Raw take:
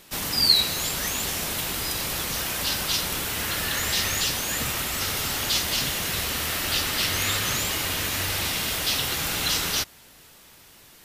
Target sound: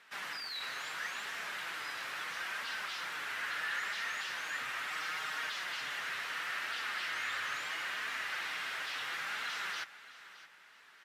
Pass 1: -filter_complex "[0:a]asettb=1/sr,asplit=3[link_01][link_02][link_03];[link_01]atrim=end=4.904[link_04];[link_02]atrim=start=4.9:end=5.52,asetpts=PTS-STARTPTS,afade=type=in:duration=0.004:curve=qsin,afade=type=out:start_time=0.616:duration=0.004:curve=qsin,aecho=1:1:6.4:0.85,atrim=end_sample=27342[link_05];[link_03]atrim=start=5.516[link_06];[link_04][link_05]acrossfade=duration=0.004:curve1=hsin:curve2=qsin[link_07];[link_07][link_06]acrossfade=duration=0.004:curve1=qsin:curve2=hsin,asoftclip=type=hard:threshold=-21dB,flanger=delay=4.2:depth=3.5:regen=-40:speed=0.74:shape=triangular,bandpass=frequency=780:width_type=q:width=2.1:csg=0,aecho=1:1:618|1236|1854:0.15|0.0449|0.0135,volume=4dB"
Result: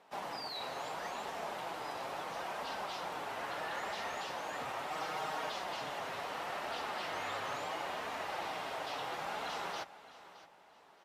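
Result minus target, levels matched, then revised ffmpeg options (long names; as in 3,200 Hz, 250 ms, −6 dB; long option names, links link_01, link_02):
1,000 Hz band +7.0 dB; hard clipping: distortion −5 dB
-filter_complex "[0:a]asettb=1/sr,asplit=3[link_01][link_02][link_03];[link_01]atrim=end=4.904[link_04];[link_02]atrim=start=4.9:end=5.52,asetpts=PTS-STARTPTS,afade=type=in:duration=0.004:curve=qsin,afade=type=out:start_time=0.616:duration=0.004:curve=qsin,aecho=1:1:6.4:0.85,atrim=end_sample=27342[link_05];[link_03]atrim=start=5.516[link_06];[link_04][link_05]acrossfade=duration=0.004:curve1=hsin:curve2=qsin[link_07];[link_07][link_06]acrossfade=duration=0.004:curve1=qsin:curve2=hsin,asoftclip=type=hard:threshold=-27dB,flanger=delay=4.2:depth=3.5:regen=-40:speed=0.74:shape=triangular,bandpass=frequency=1600:width_type=q:width=2.1:csg=0,aecho=1:1:618|1236|1854:0.15|0.0449|0.0135,volume=4dB"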